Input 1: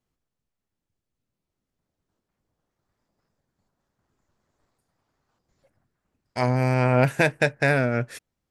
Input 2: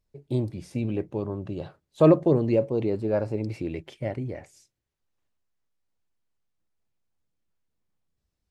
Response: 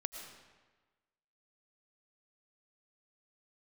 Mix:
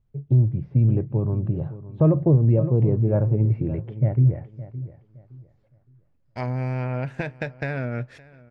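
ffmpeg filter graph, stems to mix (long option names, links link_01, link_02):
-filter_complex "[0:a]acompressor=threshold=-20dB:ratio=10,volume=-5.5dB,asplit=2[link_01][link_02];[link_02]volume=-22dB[link_03];[1:a]lowpass=1500,equalizer=frequency=130:width=2.2:gain=14,volume=-1.5dB,asplit=2[link_04][link_05];[link_05]volume=-15.5dB[link_06];[link_03][link_06]amix=inputs=2:normalize=0,aecho=0:1:565|1130|1695|2260:1|0.26|0.0676|0.0176[link_07];[link_01][link_04][link_07]amix=inputs=3:normalize=0,lowpass=3900,lowshelf=frequency=140:gain=11,alimiter=limit=-9.5dB:level=0:latency=1:release=147"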